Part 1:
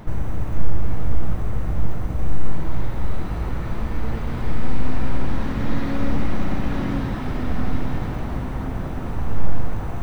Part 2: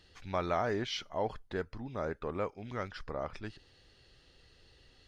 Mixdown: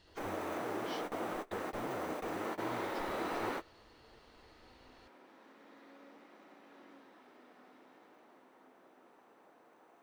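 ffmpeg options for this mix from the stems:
-filter_complex "[0:a]highpass=f=320:w=0.5412,highpass=f=320:w=1.3066,volume=0.944[s0];[1:a]acompressor=threshold=0.00794:ratio=6,volume=0.708,asplit=2[s1][s2];[s2]apad=whole_len=442200[s3];[s0][s3]sidechaingate=range=0.0501:threshold=0.00158:ratio=16:detection=peak[s4];[s4][s1]amix=inputs=2:normalize=0"

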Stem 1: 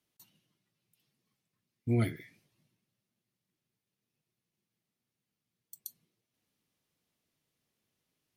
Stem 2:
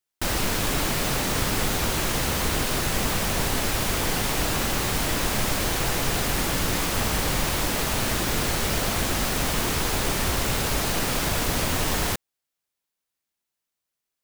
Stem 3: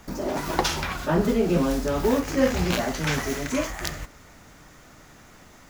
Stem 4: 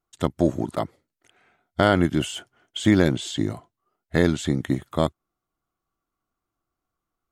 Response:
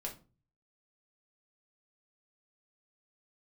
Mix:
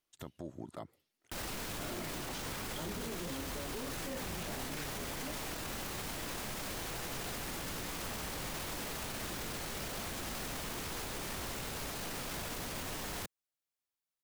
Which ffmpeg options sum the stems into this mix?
-filter_complex "[0:a]highpass=350,volume=0.668[s0];[1:a]acrossover=split=130[s1][s2];[s1]acompressor=threshold=0.0282:ratio=2.5[s3];[s3][s2]amix=inputs=2:normalize=0,adelay=1100,volume=0.335[s4];[2:a]adelay=1700,volume=0.211[s5];[3:a]acompressor=threshold=0.0501:ratio=6,volume=0.251[s6];[s0][s4][s5][s6]amix=inputs=4:normalize=0,alimiter=level_in=2.37:limit=0.0631:level=0:latency=1:release=20,volume=0.422"

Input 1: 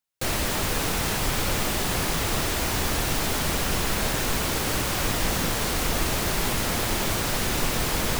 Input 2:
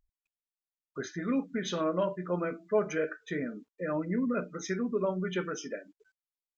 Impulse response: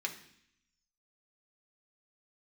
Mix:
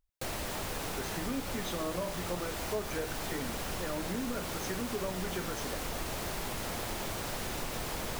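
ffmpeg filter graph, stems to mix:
-filter_complex "[0:a]equalizer=f=670:t=o:w=1.4:g=4,volume=0.335[s0];[1:a]volume=0.891[s1];[s0][s1]amix=inputs=2:normalize=0,acompressor=threshold=0.02:ratio=2.5"

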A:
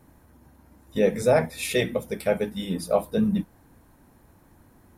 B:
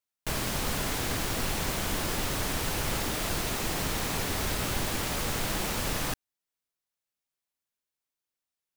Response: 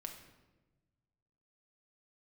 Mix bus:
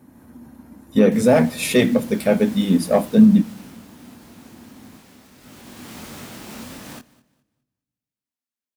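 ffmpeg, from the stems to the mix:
-filter_complex "[0:a]asoftclip=type=tanh:threshold=0.211,volume=1.06,asplit=2[s0][s1];[s1]volume=0.178[s2];[1:a]alimiter=limit=0.0794:level=0:latency=1:release=86,flanger=delay=20:depth=7.9:speed=1.5,adelay=850,volume=1.06,afade=t=out:st=3.19:d=0.69:silence=0.354813,afade=t=in:st=5.35:d=0.71:silence=0.237137,asplit=3[s3][s4][s5];[s4]volume=0.237[s6];[s5]volume=0.1[s7];[2:a]atrim=start_sample=2205[s8];[s2][s6]amix=inputs=2:normalize=0[s9];[s9][s8]afir=irnorm=-1:irlink=0[s10];[s7]aecho=0:1:207|414|621|828:1|0.27|0.0729|0.0197[s11];[s0][s3][s10][s11]amix=inputs=4:normalize=0,highpass=84,equalizer=f=240:t=o:w=0.52:g=12.5,dynaudnorm=f=110:g=3:m=1.78"

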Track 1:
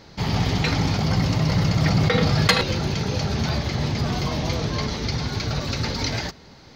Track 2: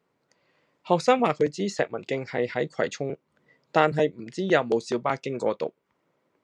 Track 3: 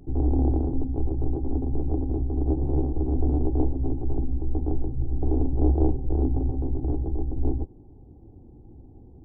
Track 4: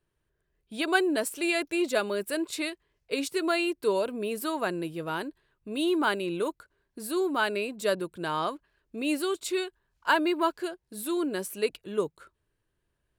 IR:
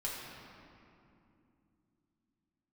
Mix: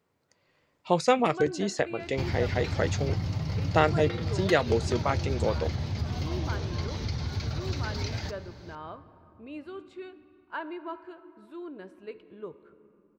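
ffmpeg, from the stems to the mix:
-filter_complex "[0:a]acompressor=threshold=0.0447:ratio=5,adelay=2000,volume=0.447,asplit=2[s0][s1];[s1]volume=0.158[s2];[1:a]highshelf=f=5200:g=5.5,volume=0.75[s3];[3:a]lowpass=2200,adelay=450,volume=0.224,asplit=2[s4][s5];[s5]volume=0.237[s6];[4:a]atrim=start_sample=2205[s7];[s2][s6]amix=inputs=2:normalize=0[s8];[s8][s7]afir=irnorm=-1:irlink=0[s9];[s0][s3][s4][s9]amix=inputs=4:normalize=0,equalizer=f=86:t=o:w=0.55:g=15"

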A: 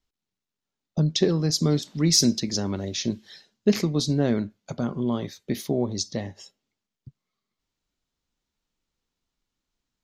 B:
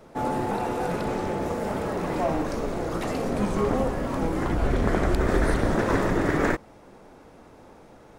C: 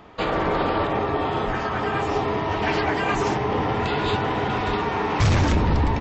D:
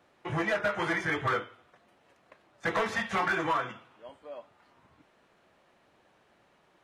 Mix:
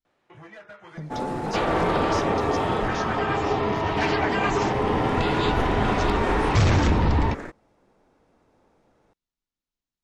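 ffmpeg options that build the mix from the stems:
-filter_complex "[0:a]alimiter=limit=0.141:level=0:latency=1:release=473,volume=0.299,asplit=2[s0][s1];[1:a]adelay=950,volume=2.66,afade=t=out:st=2.64:d=0.63:silence=0.266073,afade=t=in:st=4.6:d=0.37:silence=0.281838,afade=t=out:st=6.25:d=0.76:silence=0.298538[s2];[2:a]adelay=1350,volume=0.944[s3];[3:a]acompressor=threshold=0.00158:ratio=1.5,adelay=50,volume=0.531[s4];[s1]apad=whole_len=303585[s5];[s4][s5]sidechaincompress=threshold=0.00891:ratio=8:attack=16:release=390[s6];[s0][s2][s3][s6]amix=inputs=4:normalize=0,lowpass=9500"

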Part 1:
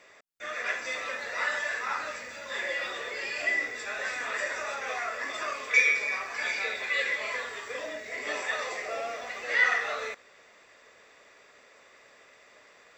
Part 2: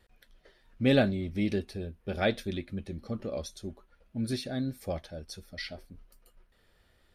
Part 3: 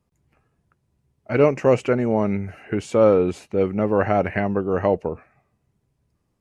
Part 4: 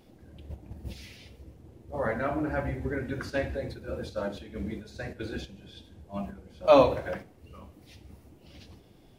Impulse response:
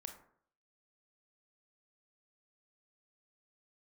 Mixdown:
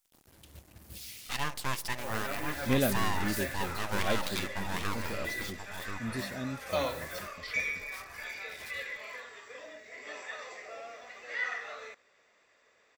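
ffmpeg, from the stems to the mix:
-filter_complex "[0:a]adelay=1800,volume=0.299[s0];[1:a]adelay=1850,volume=0.562[s1];[2:a]highpass=f=920:p=1,aeval=exprs='abs(val(0))':c=same,volume=0.355,asplit=3[s2][s3][s4];[s3]volume=0.447[s5];[s4]volume=0.562[s6];[3:a]acrusher=bits=7:mix=0:aa=0.5,adelay=50,volume=0.266[s7];[s2][s7]amix=inputs=2:normalize=0,crystalizer=i=7.5:c=0,alimiter=limit=0.0891:level=0:latency=1:release=373,volume=1[s8];[4:a]atrim=start_sample=2205[s9];[s5][s9]afir=irnorm=-1:irlink=0[s10];[s6]aecho=0:1:1033:1[s11];[s0][s1][s8][s10][s11]amix=inputs=5:normalize=0"

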